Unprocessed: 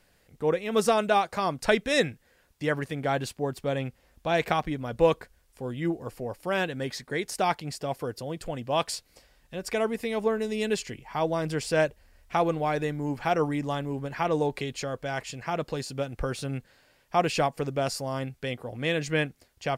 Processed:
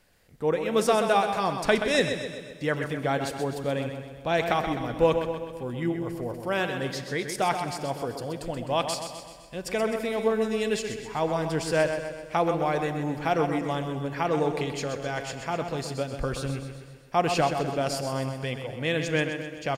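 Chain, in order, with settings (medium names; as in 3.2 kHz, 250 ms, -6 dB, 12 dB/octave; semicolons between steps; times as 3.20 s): on a send: feedback delay 128 ms, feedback 53%, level -8 dB; on the sum: Schroeder reverb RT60 1.9 s, combs from 29 ms, DRR 13 dB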